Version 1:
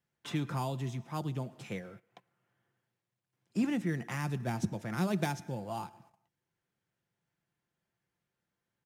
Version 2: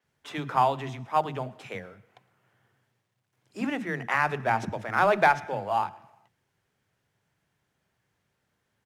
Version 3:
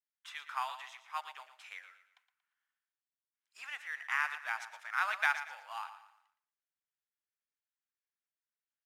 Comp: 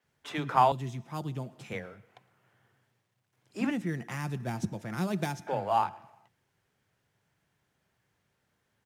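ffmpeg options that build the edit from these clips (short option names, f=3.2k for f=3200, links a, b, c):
-filter_complex "[0:a]asplit=2[a][b];[1:a]asplit=3[c][d][e];[c]atrim=end=0.722[f];[a]atrim=start=0.718:end=1.732[g];[d]atrim=start=1.728:end=3.712[h];[b]atrim=start=3.708:end=5.472[i];[e]atrim=start=5.468[j];[f][g]acrossfade=d=0.004:c1=hsin:c2=hsin[k];[k][h]acrossfade=d=0.004:c1=hsin:c2=hsin[l];[l][i]acrossfade=d=0.004:c1=hsin:c2=hsin[m];[m][j]acrossfade=d=0.004:c1=hsin:c2=hsin"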